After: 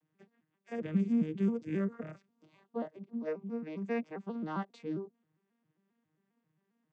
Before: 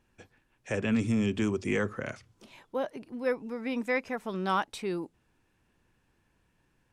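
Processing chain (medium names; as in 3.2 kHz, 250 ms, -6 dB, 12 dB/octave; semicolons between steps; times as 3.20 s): vocoder on a broken chord major triad, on D#3, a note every 134 ms; trim -3.5 dB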